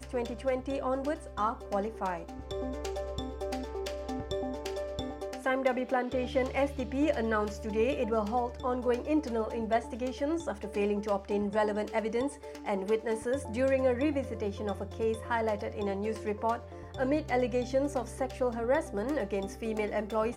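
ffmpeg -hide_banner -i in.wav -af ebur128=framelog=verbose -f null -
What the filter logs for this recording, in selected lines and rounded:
Integrated loudness:
  I:         -32.3 LUFS
  Threshold: -42.3 LUFS
Loudness range:
  LRA:         4.8 LU
  Threshold: -52.2 LUFS
  LRA low:   -35.5 LUFS
  LRA high:  -30.7 LUFS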